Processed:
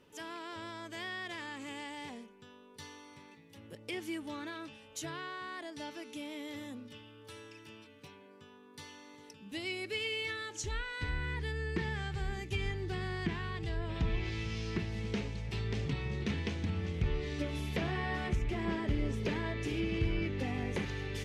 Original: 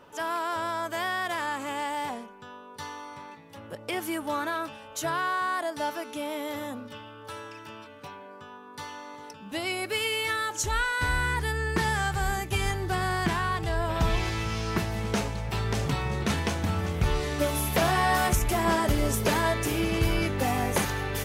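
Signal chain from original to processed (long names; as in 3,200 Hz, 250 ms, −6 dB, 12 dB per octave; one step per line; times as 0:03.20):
treble cut that deepens with the level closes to 2,600 Hz, closed at −21.5 dBFS
flat-topped bell 940 Hz −10 dB
level −6.5 dB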